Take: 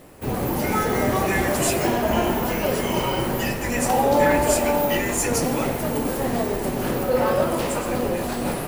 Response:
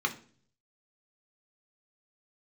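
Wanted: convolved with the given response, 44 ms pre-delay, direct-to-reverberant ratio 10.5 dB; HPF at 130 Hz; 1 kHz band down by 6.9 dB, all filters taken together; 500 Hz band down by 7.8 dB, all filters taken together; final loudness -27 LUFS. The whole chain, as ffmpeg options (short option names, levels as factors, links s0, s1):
-filter_complex "[0:a]highpass=130,equalizer=f=500:t=o:g=-8,equalizer=f=1000:t=o:g=-6,asplit=2[s0][s1];[1:a]atrim=start_sample=2205,adelay=44[s2];[s1][s2]afir=irnorm=-1:irlink=0,volume=0.119[s3];[s0][s3]amix=inputs=2:normalize=0,volume=0.841"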